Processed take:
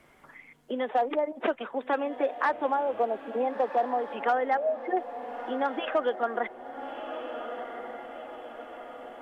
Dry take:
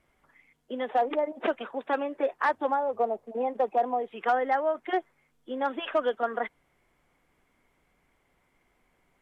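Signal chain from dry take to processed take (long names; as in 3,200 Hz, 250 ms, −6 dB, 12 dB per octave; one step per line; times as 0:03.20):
0:04.57–0:04.97: expanding power law on the bin magnitudes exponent 3.4
feedback delay with all-pass diffusion 1,364 ms, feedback 42%, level −13 dB
multiband upward and downward compressor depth 40%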